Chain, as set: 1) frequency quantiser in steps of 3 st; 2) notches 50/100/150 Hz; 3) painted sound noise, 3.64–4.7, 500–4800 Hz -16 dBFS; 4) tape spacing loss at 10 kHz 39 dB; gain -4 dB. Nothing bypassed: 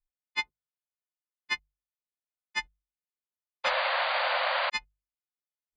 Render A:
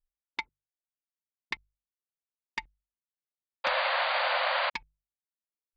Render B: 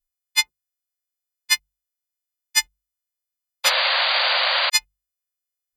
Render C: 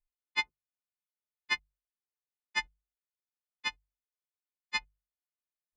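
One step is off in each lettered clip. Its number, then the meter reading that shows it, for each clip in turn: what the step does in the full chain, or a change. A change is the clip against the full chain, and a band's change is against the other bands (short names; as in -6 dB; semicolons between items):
1, momentary loudness spread change +5 LU; 4, 8 kHz band +19.5 dB; 3, 500 Hz band -21.5 dB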